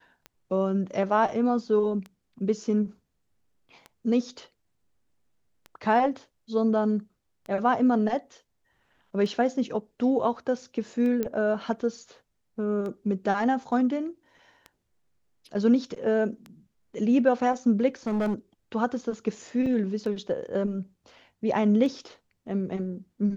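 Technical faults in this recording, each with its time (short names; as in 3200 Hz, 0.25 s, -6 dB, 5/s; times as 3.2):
tick 33 1/3 rpm -26 dBFS
11.23 pop -16 dBFS
18.07–18.34 clipped -23 dBFS
19.66 gap 3.7 ms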